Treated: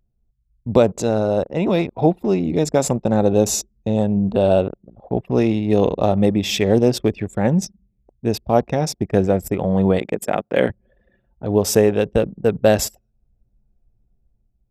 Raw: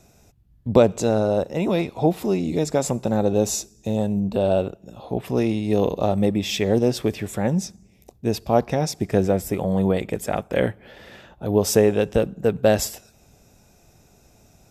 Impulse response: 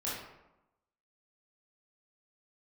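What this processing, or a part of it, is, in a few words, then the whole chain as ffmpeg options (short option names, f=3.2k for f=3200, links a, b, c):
voice memo with heavy noise removal: -filter_complex "[0:a]asettb=1/sr,asplit=3[a][b][c];[a]atrim=end=9.994[d];[b]atrim=start=9.99:end=10.7,asetpts=PTS-STARTPTS,afade=t=in:d=0.004:c=qsin,afade=t=out:st=0.706:d=0.004:c=qsin,highpass=170[e];[c]atrim=start=10.696[f];[d][e]acrossfade=d=0.004:c1=hsin:c2=qsin[g];[g][f]acrossfade=d=0.004:c1=qsin:c2=hsin,anlmdn=15.8,dynaudnorm=f=100:g=11:m=5dB"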